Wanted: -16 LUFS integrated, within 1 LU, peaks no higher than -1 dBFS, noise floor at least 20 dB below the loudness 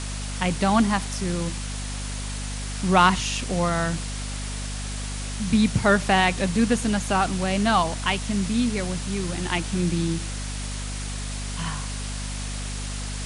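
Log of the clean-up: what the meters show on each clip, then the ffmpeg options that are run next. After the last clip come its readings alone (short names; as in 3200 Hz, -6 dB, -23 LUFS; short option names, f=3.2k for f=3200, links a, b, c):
hum 50 Hz; harmonics up to 250 Hz; hum level -29 dBFS; noise floor -31 dBFS; noise floor target -45 dBFS; loudness -25.0 LUFS; peak -4.5 dBFS; loudness target -16.0 LUFS
-> -af "bandreject=f=50:t=h:w=4,bandreject=f=100:t=h:w=4,bandreject=f=150:t=h:w=4,bandreject=f=200:t=h:w=4,bandreject=f=250:t=h:w=4"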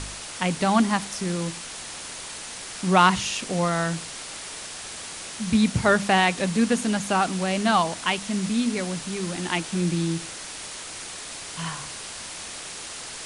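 hum none; noise floor -37 dBFS; noise floor target -46 dBFS
-> -af "afftdn=nr=9:nf=-37"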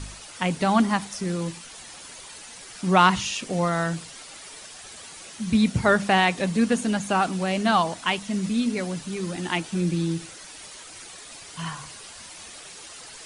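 noise floor -43 dBFS; noise floor target -44 dBFS
-> -af "afftdn=nr=6:nf=-43"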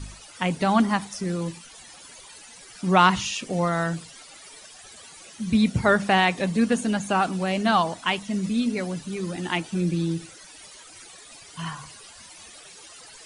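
noise floor -47 dBFS; loudness -24.0 LUFS; peak -4.5 dBFS; loudness target -16.0 LUFS
-> -af "volume=8dB,alimiter=limit=-1dB:level=0:latency=1"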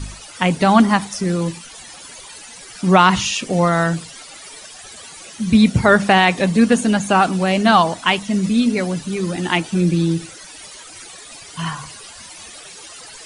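loudness -16.5 LUFS; peak -1.0 dBFS; noise floor -39 dBFS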